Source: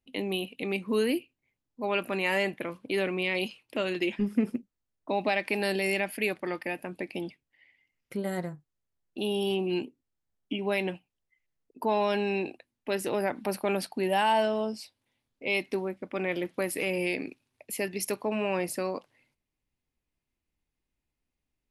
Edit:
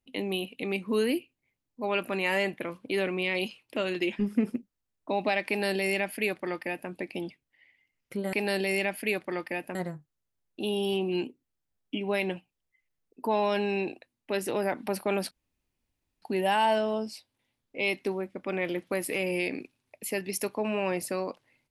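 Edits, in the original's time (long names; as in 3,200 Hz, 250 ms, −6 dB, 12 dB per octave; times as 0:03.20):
0:05.48–0:06.90: duplicate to 0:08.33
0:13.89: splice in room tone 0.91 s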